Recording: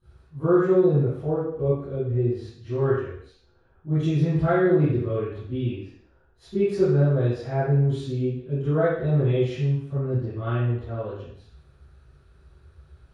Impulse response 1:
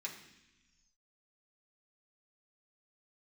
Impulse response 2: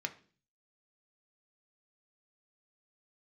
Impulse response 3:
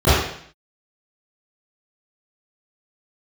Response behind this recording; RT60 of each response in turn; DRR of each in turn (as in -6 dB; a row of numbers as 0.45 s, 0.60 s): 3; 0.95 s, 0.40 s, 0.60 s; -3.0 dB, 4.5 dB, -18.5 dB